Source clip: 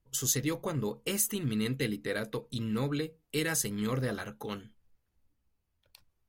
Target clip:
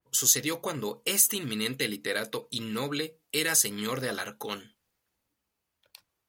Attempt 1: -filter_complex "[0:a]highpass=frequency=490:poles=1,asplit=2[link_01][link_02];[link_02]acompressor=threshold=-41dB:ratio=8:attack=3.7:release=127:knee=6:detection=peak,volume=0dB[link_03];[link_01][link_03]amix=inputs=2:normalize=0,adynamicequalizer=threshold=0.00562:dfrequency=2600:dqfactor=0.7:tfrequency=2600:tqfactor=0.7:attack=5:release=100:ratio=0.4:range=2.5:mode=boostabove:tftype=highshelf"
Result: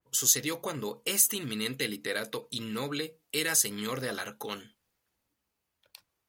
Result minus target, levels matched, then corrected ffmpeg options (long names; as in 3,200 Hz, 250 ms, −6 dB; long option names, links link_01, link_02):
downward compressor: peak gain reduction +8 dB
-filter_complex "[0:a]highpass=frequency=490:poles=1,asplit=2[link_01][link_02];[link_02]acompressor=threshold=-32dB:ratio=8:attack=3.7:release=127:knee=6:detection=peak,volume=0dB[link_03];[link_01][link_03]amix=inputs=2:normalize=0,adynamicequalizer=threshold=0.00562:dfrequency=2600:dqfactor=0.7:tfrequency=2600:tqfactor=0.7:attack=5:release=100:ratio=0.4:range=2.5:mode=boostabove:tftype=highshelf"